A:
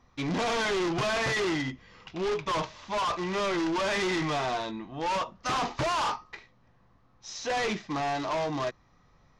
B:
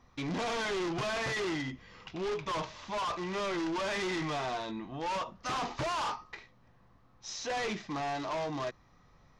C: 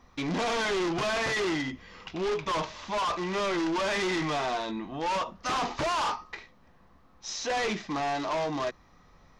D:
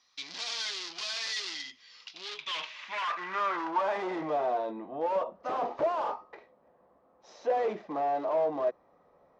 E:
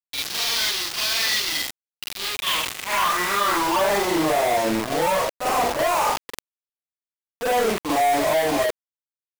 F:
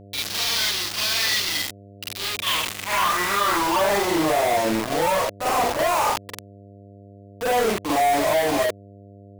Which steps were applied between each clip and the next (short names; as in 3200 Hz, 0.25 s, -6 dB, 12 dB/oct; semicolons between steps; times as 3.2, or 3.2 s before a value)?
limiter -31 dBFS, peak gain reduction 6 dB
bell 120 Hz -11 dB 0.33 oct; gain +5 dB
band-pass sweep 4600 Hz -> 560 Hz, 2.13–4.26; gain +5.5 dB
companded quantiser 2-bit; reverse echo 45 ms -3.5 dB; sustainer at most 92 dB/s; gain +4 dB
buzz 100 Hz, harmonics 7, -45 dBFS -4 dB/oct